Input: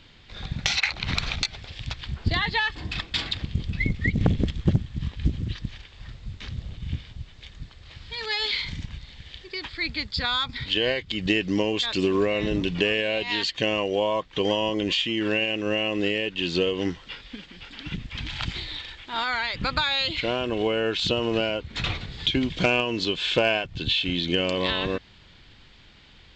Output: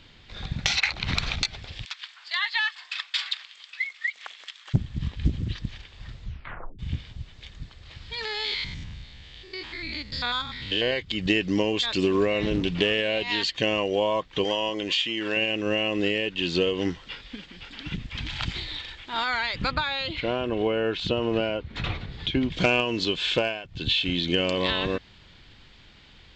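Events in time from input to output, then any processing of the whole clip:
1.85–4.74 s: high-pass 1.1 kHz 24 dB/octave
6.22 s: tape stop 0.57 s
8.25–10.93 s: spectrogram pixelated in time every 100 ms
12.42–13.22 s: loudspeaker Doppler distortion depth 0.16 ms
14.44–15.37 s: bass shelf 300 Hz -11 dB
19.71–22.52 s: low-pass 2.1 kHz 6 dB/octave
23.31–23.87 s: dip -10 dB, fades 0.24 s

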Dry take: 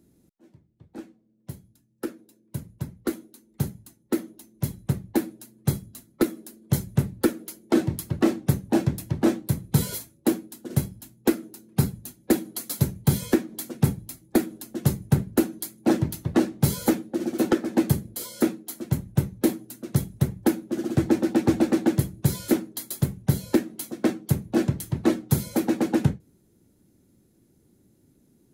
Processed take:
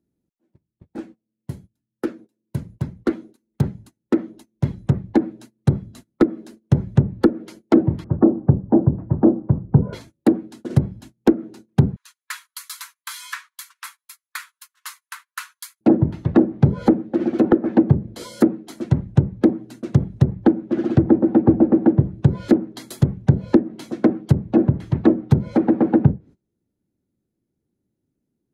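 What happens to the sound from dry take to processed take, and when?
8.04–9.93 s: low-pass 1.2 kHz 24 dB/octave
11.96–15.81 s: steep high-pass 1 kHz 96 dB/octave
whole clip: treble shelf 3.9 kHz -9 dB; gate -48 dBFS, range -22 dB; low-pass that closes with the level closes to 600 Hz, closed at -17.5 dBFS; trim +7 dB

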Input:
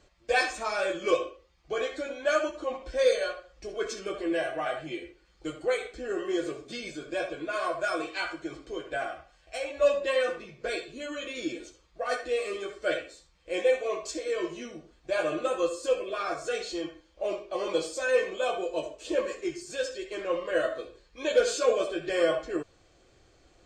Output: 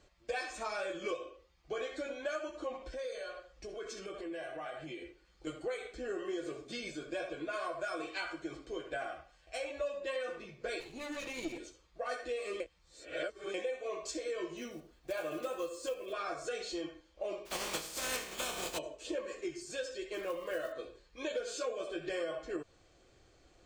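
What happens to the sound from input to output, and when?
2.87–5.47 s: compression 3:1, threshold -38 dBFS
10.80–11.58 s: comb filter that takes the minimum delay 0.46 ms
12.60–13.54 s: reverse
14.57–16.13 s: block-companded coder 5-bit
17.45–18.77 s: spectral contrast reduction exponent 0.31
20.14–20.73 s: block-companded coder 5-bit
whole clip: compression 6:1, threshold -31 dBFS; trim -3.5 dB

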